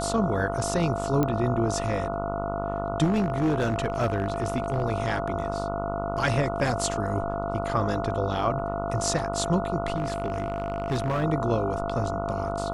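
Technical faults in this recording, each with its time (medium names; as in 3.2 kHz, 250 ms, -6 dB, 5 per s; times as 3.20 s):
buzz 50 Hz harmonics 29 -32 dBFS
whine 680 Hz -30 dBFS
1.23 s: pop -12 dBFS
3.03–4.83 s: clipped -19.5 dBFS
9.96–11.24 s: clipped -22 dBFS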